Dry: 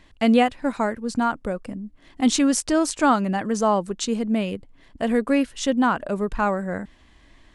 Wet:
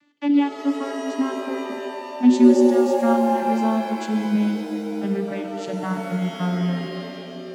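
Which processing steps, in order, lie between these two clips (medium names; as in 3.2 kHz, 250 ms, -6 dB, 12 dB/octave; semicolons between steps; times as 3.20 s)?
vocoder on a note that slides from D4, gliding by -10 st; peaking EQ 520 Hz -10.5 dB 2.2 oct; pitch-shifted reverb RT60 2.8 s, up +7 st, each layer -2 dB, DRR 5.5 dB; trim +5 dB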